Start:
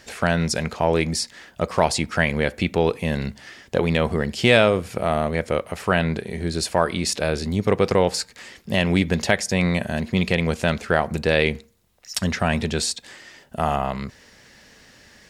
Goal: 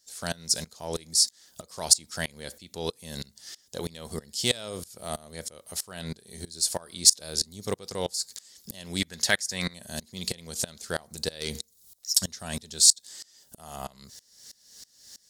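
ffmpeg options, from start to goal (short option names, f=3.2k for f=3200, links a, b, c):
-filter_complex "[0:a]asettb=1/sr,asplit=3[a][b][c];[a]atrim=end=9.004[d];[b]atrim=start=9:end=9.74,asetpts=PTS-STARTPTS,afade=t=in:d=0.004:c=qsin,afade=t=out:st=0.736:d=0.004:c=qsin,equalizer=f=1.7k:w=1:g=10[e];[c]atrim=start=9.736[f];[d][e]acrossfade=d=0.004:c1=hsin:c2=qsin[g];[g][f]acrossfade=d=0.004:c1=qsin:c2=hsin,asplit=3[h][i][j];[h]afade=t=out:st=11.4:d=0.02[k];[i]acontrast=86,afade=t=in:st=11.4:d=0.02,afade=t=out:st=12.12:d=0.02[l];[j]afade=t=in:st=12.12:d=0.02[m];[k][l][m]amix=inputs=3:normalize=0,aexciter=amount=9.7:drive=6.4:freq=3.7k,aeval=exprs='val(0)*pow(10,-24*if(lt(mod(-3.1*n/s,1),2*abs(-3.1)/1000),1-mod(-3.1*n/s,1)/(2*abs(-3.1)/1000),(mod(-3.1*n/s,1)-2*abs(-3.1)/1000)/(1-2*abs(-3.1)/1000))/20)':c=same,volume=-9dB"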